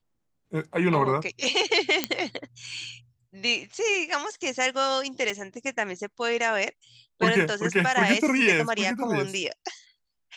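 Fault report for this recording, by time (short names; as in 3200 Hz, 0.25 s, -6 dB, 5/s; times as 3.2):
2.04 pop -6 dBFS
5.3 gap 2.2 ms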